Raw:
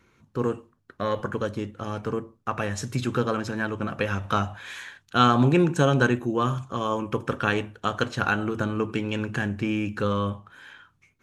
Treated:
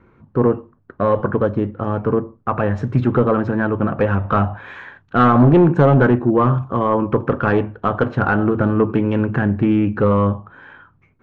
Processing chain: in parallel at -3 dB: wavefolder -19 dBFS; on the sum: low-pass 1.2 kHz 12 dB/octave; loudspeaker Doppler distortion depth 0.15 ms; trim +6.5 dB

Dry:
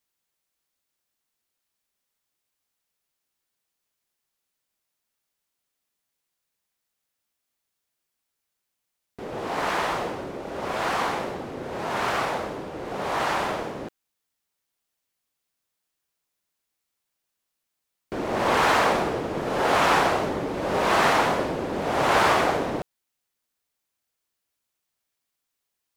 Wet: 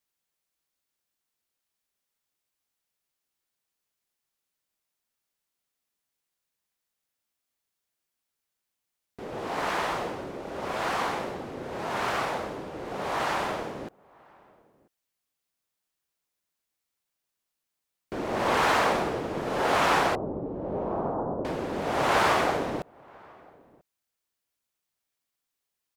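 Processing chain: 20.15–21.45 s: Gaussian low-pass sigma 11 samples; echo from a far wall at 170 m, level -26 dB; trim -3 dB

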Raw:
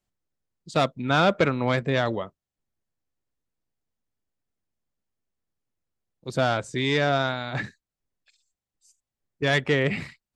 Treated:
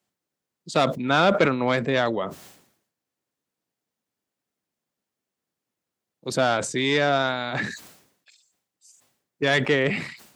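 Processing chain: in parallel at 0 dB: compression, threshold -32 dBFS, peak gain reduction 15.5 dB; on the sum: high-pass 180 Hz 12 dB/octave; decay stretcher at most 83 dB/s

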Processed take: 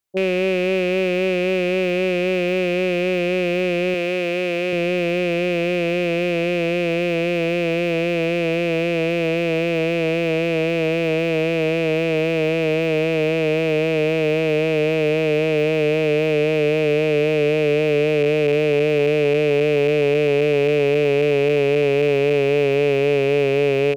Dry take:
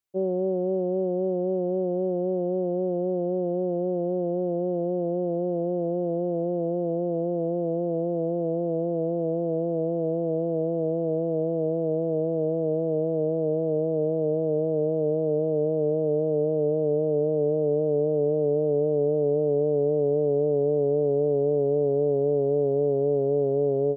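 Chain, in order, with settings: rattle on loud lows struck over -38 dBFS, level -22 dBFS; 3.94–4.73 s: high-pass 280 Hz 6 dB/octave; trim +5.5 dB

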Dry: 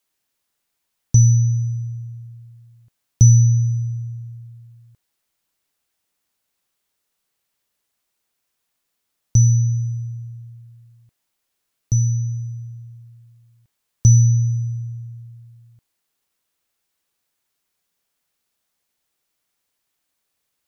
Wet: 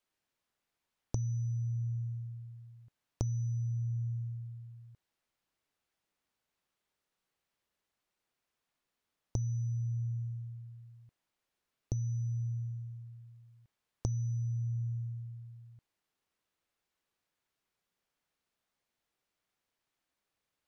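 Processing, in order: low-pass 2.7 kHz 6 dB/octave; compression 16:1, threshold -27 dBFS, peak gain reduction 20.5 dB; trim -4.5 dB

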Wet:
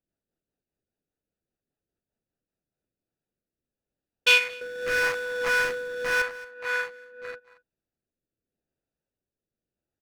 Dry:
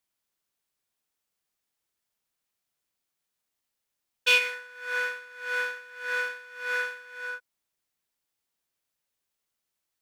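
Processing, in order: local Wiener filter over 41 samples; in parallel at +1.5 dB: compression, threshold -40 dBFS, peak gain reduction 21 dB; 4.61–6.22 s: on the sum: power-law waveshaper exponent 0.5; delay 227 ms -21.5 dB; rotary cabinet horn 5 Hz, later 0.85 Hz, at 2.45 s; trim +3.5 dB

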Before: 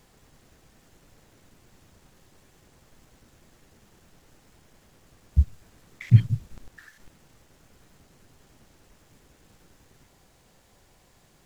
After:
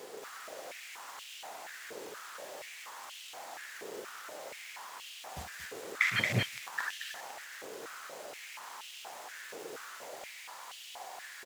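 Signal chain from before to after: loudspeakers at several distances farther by 17 m -11 dB, 78 m -1 dB; step-sequenced high-pass 4.2 Hz 440–2900 Hz; trim +10 dB

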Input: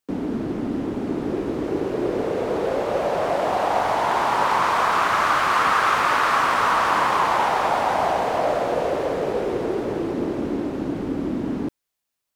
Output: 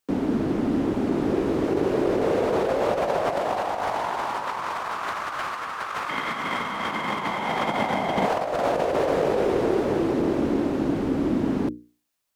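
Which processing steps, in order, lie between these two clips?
hum notches 60/120/180/240/300/360/420/480 Hz; compressor with a negative ratio -24 dBFS, ratio -0.5; 6.09–8.26 s: small resonant body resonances 200/2100/3200 Hz, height 15 dB, ringing for 25 ms

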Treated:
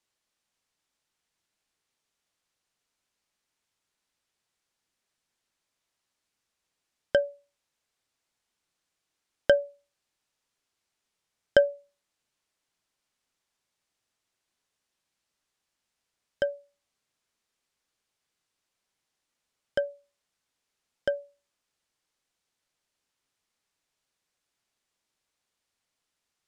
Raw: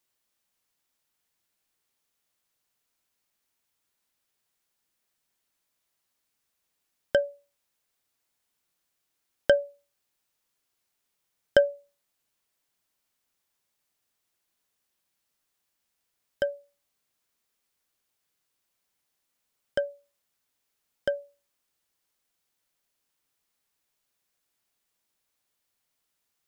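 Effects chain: low-pass 8.3 kHz 12 dB/octave

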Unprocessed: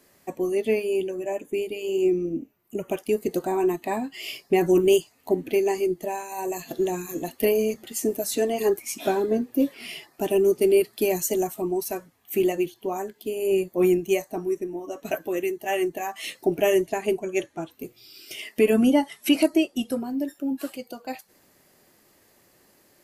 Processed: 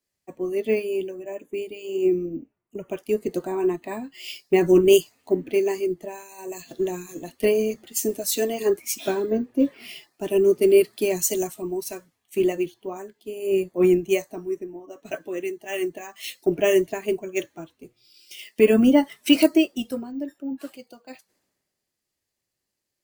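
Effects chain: dynamic bell 790 Hz, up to -7 dB, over -45 dBFS, Q 5.2; careless resampling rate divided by 2×, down filtered, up hold; three bands expanded up and down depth 70%

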